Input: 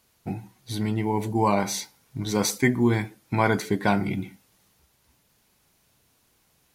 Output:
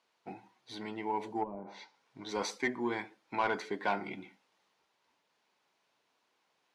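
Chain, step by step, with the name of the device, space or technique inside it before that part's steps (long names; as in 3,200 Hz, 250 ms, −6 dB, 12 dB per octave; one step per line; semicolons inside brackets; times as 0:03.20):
intercom (band-pass filter 390–4,100 Hz; parametric band 950 Hz +4 dB 0.4 octaves; soft clipping −14.5 dBFS, distortion −15 dB)
0:01.40–0:02.29: treble cut that deepens with the level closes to 310 Hz, closed at −21 dBFS
level −6.5 dB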